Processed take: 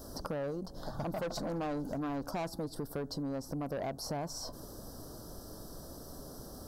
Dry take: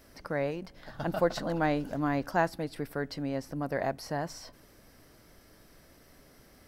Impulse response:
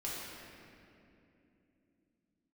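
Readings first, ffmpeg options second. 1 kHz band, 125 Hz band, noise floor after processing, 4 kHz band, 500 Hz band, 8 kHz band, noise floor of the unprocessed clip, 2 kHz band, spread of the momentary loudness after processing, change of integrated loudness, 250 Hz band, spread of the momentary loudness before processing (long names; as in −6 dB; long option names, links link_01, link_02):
−7.5 dB, −4.0 dB, −49 dBFS, −0.5 dB, −6.0 dB, +3.5 dB, −58 dBFS, −12.0 dB, 11 LU, −7.0 dB, −4.5 dB, 10 LU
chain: -af "asuperstop=centerf=2300:order=4:qfactor=0.7,asoftclip=type=tanh:threshold=-31dB,acompressor=threshold=-48dB:ratio=4,volume=11dB"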